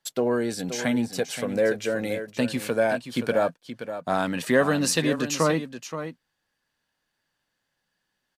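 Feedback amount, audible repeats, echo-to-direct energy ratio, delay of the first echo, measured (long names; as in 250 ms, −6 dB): repeats not evenly spaced, 1, −10.5 dB, 525 ms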